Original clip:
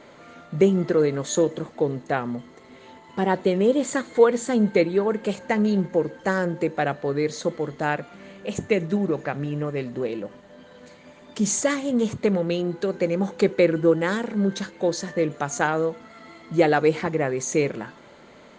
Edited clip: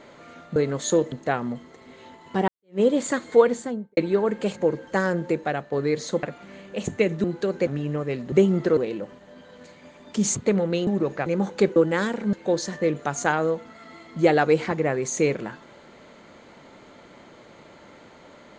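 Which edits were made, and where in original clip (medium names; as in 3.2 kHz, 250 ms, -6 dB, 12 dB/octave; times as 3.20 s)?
0.56–1.01 s: move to 9.99 s
1.57–1.95 s: delete
3.31–3.63 s: fade in exponential
4.24–4.80 s: studio fade out
5.40–5.89 s: delete
6.63–7.04 s: fade out, to -7 dB
7.55–7.94 s: delete
8.95–9.34 s: swap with 12.64–13.07 s
11.57–12.12 s: delete
13.57–13.86 s: delete
14.43–14.68 s: delete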